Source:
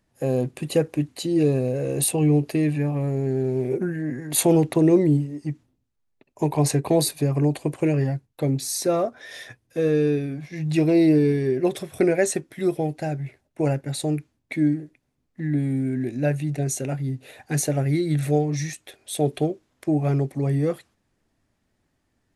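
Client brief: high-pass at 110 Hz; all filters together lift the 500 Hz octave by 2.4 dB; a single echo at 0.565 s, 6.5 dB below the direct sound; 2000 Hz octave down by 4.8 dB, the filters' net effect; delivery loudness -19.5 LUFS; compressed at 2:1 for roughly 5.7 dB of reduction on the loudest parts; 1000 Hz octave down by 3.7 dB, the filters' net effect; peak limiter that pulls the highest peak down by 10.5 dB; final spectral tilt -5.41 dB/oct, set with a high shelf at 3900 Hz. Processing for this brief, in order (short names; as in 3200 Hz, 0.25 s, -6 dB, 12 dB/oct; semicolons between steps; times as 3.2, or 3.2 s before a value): HPF 110 Hz; bell 500 Hz +5 dB; bell 1000 Hz -9 dB; bell 2000 Hz -6 dB; high shelf 3900 Hz +8.5 dB; compressor 2:1, threshold -21 dBFS; limiter -16.5 dBFS; echo 0.565 s -6.5 dB; gain +6.5 dB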